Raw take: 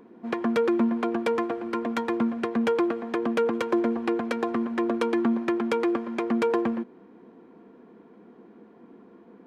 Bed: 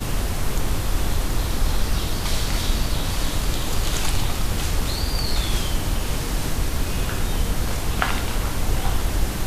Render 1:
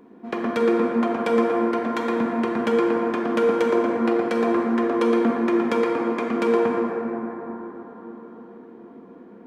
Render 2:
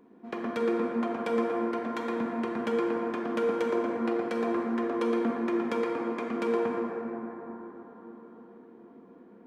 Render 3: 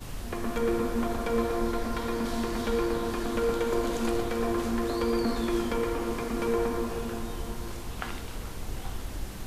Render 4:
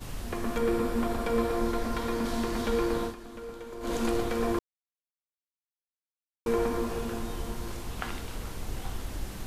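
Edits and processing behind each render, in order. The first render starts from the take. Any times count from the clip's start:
dense smooth reverb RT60 4.5 s, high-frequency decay 0.3×, DRR −2.5 dB
level −8 dB
mix in bed −14 dB
0:00.58–0:01.57: notch filter 6,300 Hz; 0:03.03–0:03.92: duck −14 dB, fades 0.12 s; 0:04.59–0:06.46: silence

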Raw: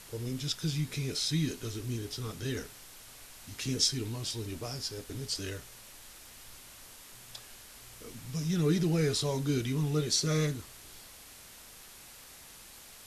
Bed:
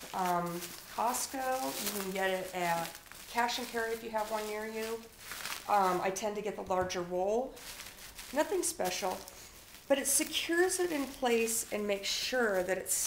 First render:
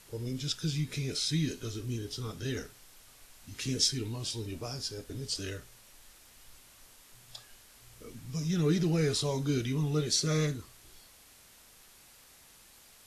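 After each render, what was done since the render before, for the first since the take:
noise reduction from a noise print 6 dB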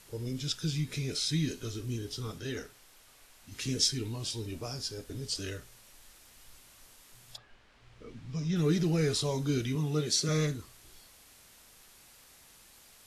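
0:02.38–0:03.52: bass and treble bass −5 dB, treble −3 dB
0:07.36–0:08.55: low-pass filter 2,200 Hz → 4,800 Hz
0:09.75–0:10.29: high-pass filter 110 Hz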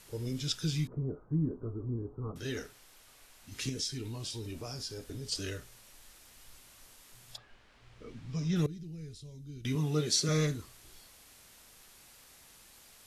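0:00.87–0:02.36: Butterworth low-pass 1,200 Hz 48 dB per octave
0:03.69–0:05.32: downward compressor 2 to 1, threshold −38 dBFS
0:08.66–0:09.65: guitar amp tone stack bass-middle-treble 10-0-1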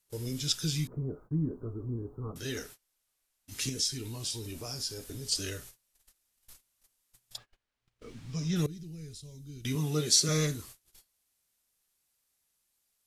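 noise gate −51 dBFS, range −27 dB
high-shelf EQ 5,500 Hz +11 dB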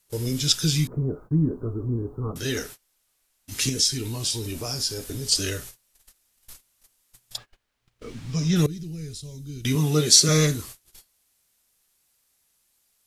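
level +9 dB

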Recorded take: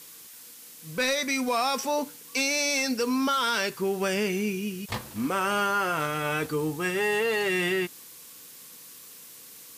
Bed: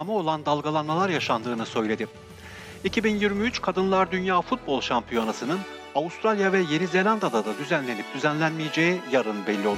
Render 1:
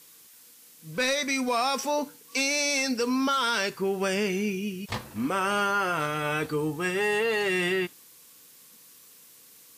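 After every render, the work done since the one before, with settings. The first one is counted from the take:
noise reduction from a noise print 6 dB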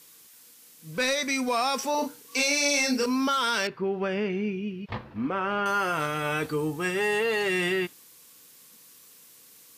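0:01.91–0:03.06: double-tracking delay 35 ms −3 dB
0:03.67–0:05.66: high-frequency loss of the air 350 metres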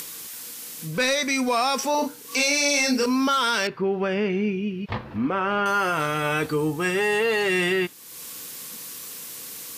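in parallel at −2.5 dB: brickwall limiter −21.5 dBFS, peak gain reduction 8 dB
on the sum: upward compression, threshold −26 dBFS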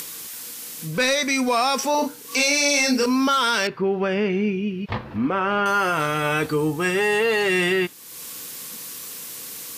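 level +2 dB

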